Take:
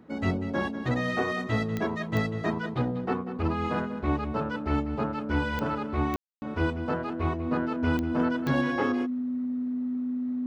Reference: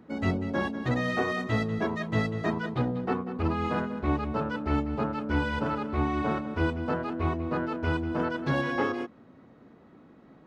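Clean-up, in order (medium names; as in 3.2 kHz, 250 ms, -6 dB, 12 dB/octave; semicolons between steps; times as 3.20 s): de-click; band-stop 250 Hz, Q 30; room tone fill 6.16–6.42 s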